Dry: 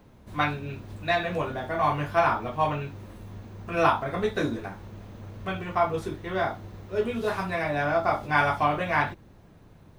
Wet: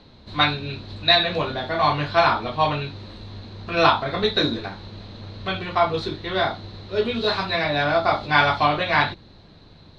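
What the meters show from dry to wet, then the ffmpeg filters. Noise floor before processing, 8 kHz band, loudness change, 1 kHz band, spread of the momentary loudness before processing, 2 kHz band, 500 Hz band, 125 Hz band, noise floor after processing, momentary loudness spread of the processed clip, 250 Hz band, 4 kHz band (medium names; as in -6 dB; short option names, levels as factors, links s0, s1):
-53 dBFS, no reading, +5.5 dB, +4.5 dB, 17 LU, +6.0 dB, +4.0 dB, +3.5 dB, -49 dBFS, 18 LU, +3.5 dB, +17.0 dB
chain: -af "lowpass=f=4100:t=q:w=11,bandreject=f=60:t=h:w=6,bandreject=f=120:t=h:w=6,bandreject=f=180:t=h:w=6,volume=1.58"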